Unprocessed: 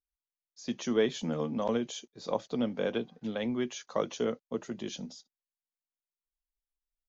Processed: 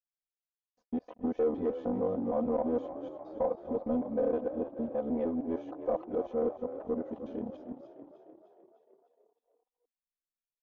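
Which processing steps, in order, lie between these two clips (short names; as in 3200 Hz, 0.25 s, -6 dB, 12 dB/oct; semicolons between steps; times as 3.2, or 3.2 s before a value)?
local time reversal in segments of 0.103 s; low shelf 190 Hz -6 dB; sample leveller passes 3; granular stretch 1.5×, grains 24 ms; synth low-pass 700 Hz, resonance Q 1.6; on a send: frequency-shifting echo 0.304 s, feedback 60%, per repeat +34 Hz, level -12 dB; on the sum: gain -8 dB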